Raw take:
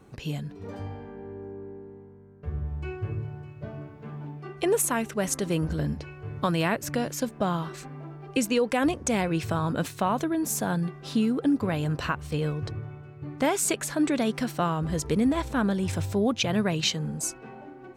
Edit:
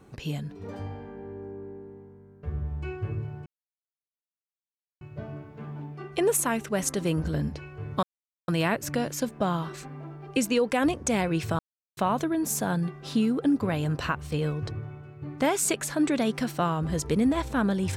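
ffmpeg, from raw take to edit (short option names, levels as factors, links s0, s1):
-filter_complex "[0:a]asplit=5[s0][s1][s2][s3][s4];[s0]atrim=end=3.46,asetpts=PTS-STARTPTS,afade=t=out:st=3.456:d=0.004:c=hsin,apad=pad_dur=1.55[s5];[s1]atrim=start=3.46:end=6.48,asetpts=PTS-STARTPTS,afade=t=in:d=0.004:c=hsin,afade=t=out:st=3.016:d=0.004:c=hsin,apad=pad_dur=0.45[s6];[s2]atrim=start=6.48:end=9.59,asetpts=PTS-STARTPTS,afade=t=in:d=0.004:c=hsin,afade=t=out:st=3.106:d=0.004:c=hsin[s7];[s3]atrim=start=9.59:end=9.97,asetpts=PTS-STARTPTS,volume=0[s8];[s4]atrim=start=9.97,asetpts=PTS-STARTPTS,afade=t=in:d=0.004:c=hsin[s9];[s5][s6][s7][s8][s9]concat=n=5:v=0:a=1"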